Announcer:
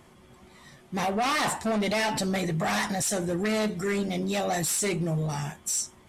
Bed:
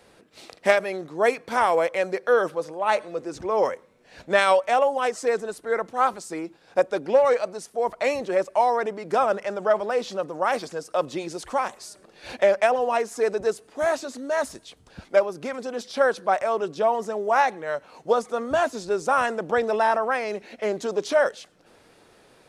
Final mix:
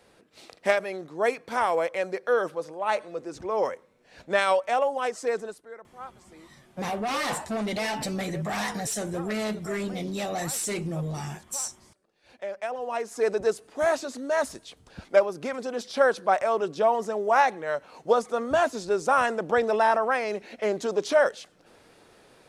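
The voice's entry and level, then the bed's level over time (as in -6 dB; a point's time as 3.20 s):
5.85 s, -3.0 dB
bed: 5.46 s -4 dB
5.75 s -20 dB
12.24 s -20 dB
13.30 s -0.5 dB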